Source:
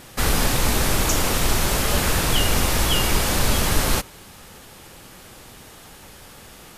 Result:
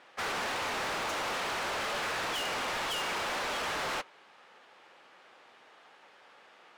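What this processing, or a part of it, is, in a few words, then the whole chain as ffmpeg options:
walkie-talkie: -af "highpass=590,lowpass=2600,asoftclip=type=hard:threshold=-32dB,agate=range=-8dB:threshold=-37dB:ratio=16:detection=peak"

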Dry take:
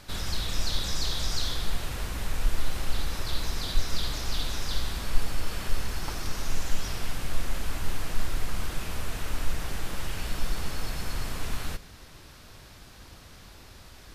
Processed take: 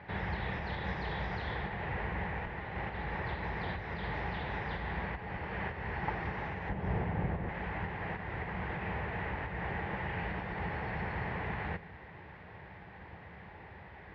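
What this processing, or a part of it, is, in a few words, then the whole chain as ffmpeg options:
bass amplifier: -filter_complex "[0:a]acompressor=threshold=-21dB:ratio=4,highpass=frequency=64:width=0.5412,highpass=frequency=64:width=1.3066,equalizer=frequency=180:width_type=q:width=4:gain=6,equalizer=frequency=260:width_type=q:width=4:gain=-7,equalizer=frequency=440:width_type=q:width=4:gain=4,equalizer=frequency=840:width_type=q:width=4:gain=9,equalizer=frequency=1300:width_type=q:width=4:gain=-6,equalizer=frequency=1900:width_type=q:width=4:gain=9,lowpass=frequency=2300:width=0.5412,lowpass=frequency=2300:width=1.3066,asettb=1/sr,asplit=3[link_01][link_02][link_03];[link_01]atrim=end=6.694[link_04];[link_02]atrim=start=6.69:end=7.49,asetpts=PTS-STARTPTS,afade=type=in:duration=0.004:curve=qsin,afade=type=out:start_time=0.796:duration=0.004:curve=qsin,tiltshelf=frequency=970:gain=7[link_05];[link_03]atrim=start=7.486[link_06];[link_04][link_05]acrossfade=duration=0.004:curve1=hsin:curve2=qsin[link_07];[link_07][link_06]acrossfade=duration=0.004:curve1=qsin:curve2=hsin"

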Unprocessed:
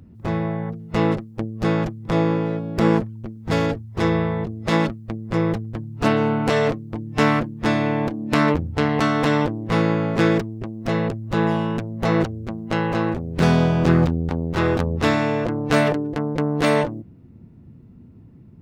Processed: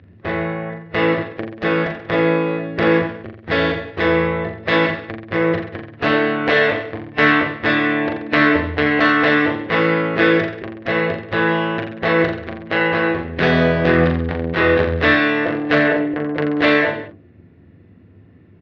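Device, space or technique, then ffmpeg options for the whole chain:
overdrive pedal into a guitar cabinet: -filter_complex "[0:a]asplit=2[link_01][link_02];[link_02]highpass=frequency=720:poles=1,volume=10dB,asoftclip=type=tanh:threshold=-4dB[link_03];[link_01][link_03]amix=inputs=2:normalize=0,lowpass=frequency=3500:poles=1,volume=-6dB,highpass=88,equalizer=frequency=89:width_type=q:width=4:gain=9,equalizer=frequency=130:width_type=q:width=4:gain=-8,equalizer=frequency=220:width_type=q:width=4:gain=-7,equalizer=frequency=900:width_type=q:width=4:gain=-9,equalizer=frequency=1300:width_type=q:width=4:gain=-4,equalizer=frequency=1800:width_type=q:width=4:gain=7,lowpass=frequency=4100:width=0.5412,lowpass=frequency=4100:width=1.3066,asplit=3[link_04][link_05][link_06];[link_04]afade=type=out:start_time=15.74:duration=0.02[link_07];[link_05]lowpass=frequency=1500:poles=1,afade=type=in:start_time=15.74:duration=0.02,afade=type=out:start_time=16.2:duration=0.02[link_08];[link_06]afade=type=in:start_time=16.2:duration=0.02[link_09];[link_07][link_08][link_09]amix=inputs=3:normalize=0,aecho=1:1:40|84|132.4|185.6|244.2:0.631|0.398|0.251|0.158|0.1,volume=2.5dB"

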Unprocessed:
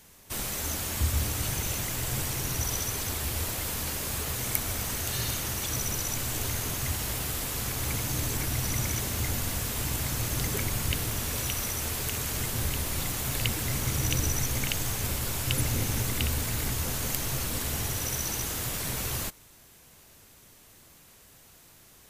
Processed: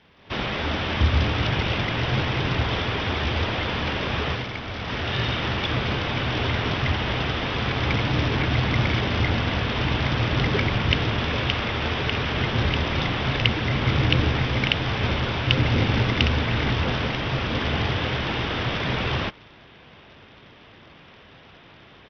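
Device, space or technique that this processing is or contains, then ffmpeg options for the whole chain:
Bluetooth headset: -af "highpass=frequency=100:poles=1,dynaudnorm=framelen=160:gausssize=3:maxgain=9dB,aresample=8000,aresample=44100,volume=2.5dB" -ar 44100 -c:a sbc -b:a 64k

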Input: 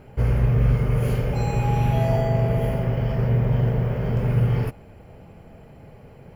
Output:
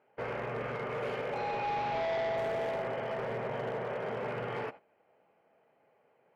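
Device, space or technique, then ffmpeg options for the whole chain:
walkie-talkie: -filter_complex "[0:a]highpass=540,lowpass=2500,asoftclip=type=hard:threshold=-30dB,agate=range=-15dB:threshold=-46dB:ratio=16:detection=peak,asettb=1/sr,asplit=3[link_01][link_02][link_03];[link_01]atrim=end=1.384[link_04];[link_02]atrim=start=1.38:end=2.38,asetpts=PTS-STARTPTS,afade=type=in:duration=0.004:curve=qsin,afade=type=out:start_time=0.996:duration=0.004:curve=qsin,lowpass=frequency=5800:width=0.5412,lowpass=frequency=5800:width=1.3066[link_05];[link_03]atrim=start=2.376[link_06];[link_04][link_05]acrossfade=duration=0.004:curve1=hsin:curve2=qsin[link_07];[link_07][link_06]acrossfade=duration=0.004:curve1=qsin:curve2=hsin"

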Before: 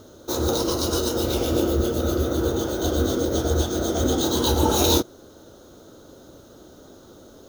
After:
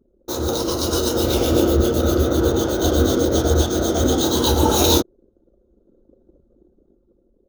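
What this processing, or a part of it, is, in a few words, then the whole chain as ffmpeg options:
voice memo with heavy noise removal: -af "anlmdn=3.98,dynaudnorm=framelen=210:gausssize=9:maxgain=6dB"

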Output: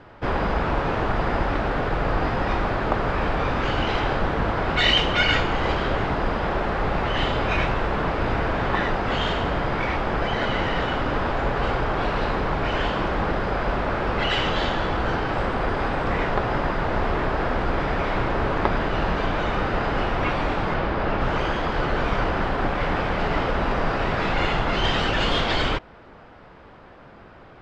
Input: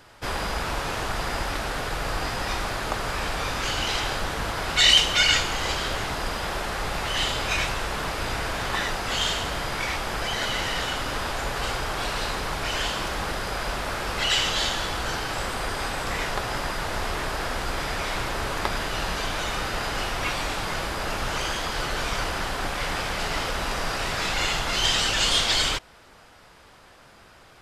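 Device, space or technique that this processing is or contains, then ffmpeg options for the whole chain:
phone in a pocket: -filter_complex "[0:a]lowpass=3300,equalizer=frequency=250:width_type=o:width=2.4:gain=4,highshelf=frequency=2400:gain=-11,asettb=1/sr,asplit=3[link_01][link_02][link_03];[link_01]atrim=end=20.744[link_04];[link_02]atrim=start=20.74:end=21.21,asetpts=PTS-STARTPTS,afade=type=in:duration=0.004:curve=qsin,afade=type=out:start_time=0.466:duration=0.004:curve=qsin,lowpass=5200[link_05];[link_03]atrim=start=21.206[link_06];[link_04][link_05]acrossfade=duration=0.004:curve1=hsin:curve2=qsin[link_07];[link_07][link_06]acrossfade=duration=0.004:curve1=qsin:curve2=hsin,volume=5.5dB"

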